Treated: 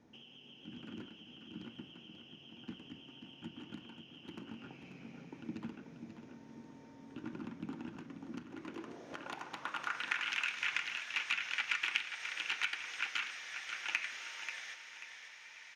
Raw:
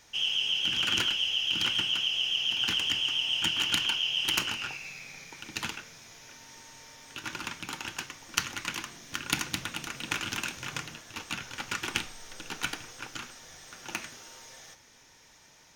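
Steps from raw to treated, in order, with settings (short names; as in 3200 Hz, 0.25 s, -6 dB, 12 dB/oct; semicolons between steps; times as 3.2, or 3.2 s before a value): compressor 6:1, threshold -37 dBFS, peak gain reduction 15 dB; band-pass sweep 240 Hz -> 2200 Hz, 8.38–10.33; feedback echo 0.537 s, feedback 34%, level -9 dB; gain +10.5 dB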